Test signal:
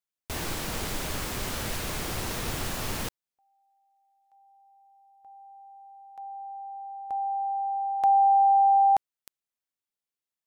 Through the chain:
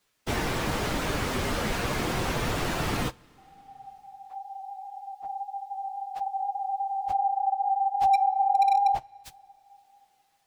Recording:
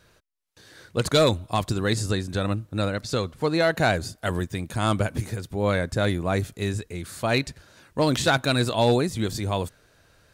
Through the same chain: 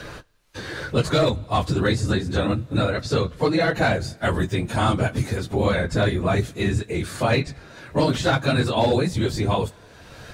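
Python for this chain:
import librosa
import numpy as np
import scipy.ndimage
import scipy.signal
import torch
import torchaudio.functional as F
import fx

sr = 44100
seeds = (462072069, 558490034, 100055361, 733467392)

y = fx.phase_scramble(x, sr, seeds[0], window_ms=50)
y = fx.high_shelf(y, sr, hz=7800.0, db=-11.0)
y = np.clip(y, -10.0 ** (-12.5 / 20.0), 10.0 ** (-12.5 / 20.0))
y = fx.rev_double_slope(y, sr, seeds[1], early_s=0.22, late_s=1.7, knee_db=-18, drr_db=18.0)
y = fx.band_squash(y, sr, depth_pct=70)
y = y * 10.0 ** (2.5 / 20.0)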